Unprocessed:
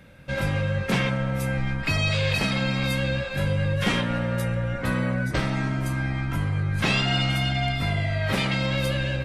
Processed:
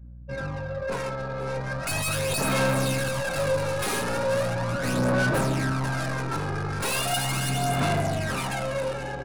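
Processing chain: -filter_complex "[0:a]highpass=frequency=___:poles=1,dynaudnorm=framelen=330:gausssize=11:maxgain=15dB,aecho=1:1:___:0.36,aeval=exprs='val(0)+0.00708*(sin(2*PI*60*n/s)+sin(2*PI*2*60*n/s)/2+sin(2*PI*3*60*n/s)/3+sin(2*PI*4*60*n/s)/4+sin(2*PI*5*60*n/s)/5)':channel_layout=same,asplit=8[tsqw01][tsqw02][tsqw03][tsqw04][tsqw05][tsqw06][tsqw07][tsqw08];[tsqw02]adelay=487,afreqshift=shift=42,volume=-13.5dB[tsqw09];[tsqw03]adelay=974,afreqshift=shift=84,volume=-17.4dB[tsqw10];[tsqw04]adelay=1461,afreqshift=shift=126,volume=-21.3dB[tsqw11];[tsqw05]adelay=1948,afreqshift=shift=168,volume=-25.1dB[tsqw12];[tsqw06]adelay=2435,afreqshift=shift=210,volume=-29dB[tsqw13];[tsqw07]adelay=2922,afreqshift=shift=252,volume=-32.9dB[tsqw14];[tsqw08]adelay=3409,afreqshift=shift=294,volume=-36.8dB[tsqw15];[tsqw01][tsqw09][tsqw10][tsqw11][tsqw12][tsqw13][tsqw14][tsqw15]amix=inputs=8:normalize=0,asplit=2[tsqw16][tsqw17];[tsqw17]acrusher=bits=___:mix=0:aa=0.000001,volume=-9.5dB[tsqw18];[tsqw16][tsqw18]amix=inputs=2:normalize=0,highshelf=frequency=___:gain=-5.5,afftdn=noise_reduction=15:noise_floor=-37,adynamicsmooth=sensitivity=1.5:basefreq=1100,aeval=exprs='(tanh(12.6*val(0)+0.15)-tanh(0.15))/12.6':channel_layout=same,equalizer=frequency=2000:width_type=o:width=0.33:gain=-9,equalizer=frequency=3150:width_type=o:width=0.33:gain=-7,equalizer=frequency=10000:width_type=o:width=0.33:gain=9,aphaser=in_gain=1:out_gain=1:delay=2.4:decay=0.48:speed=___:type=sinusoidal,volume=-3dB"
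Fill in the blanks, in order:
440, 7.4, 4, 3300, 0.38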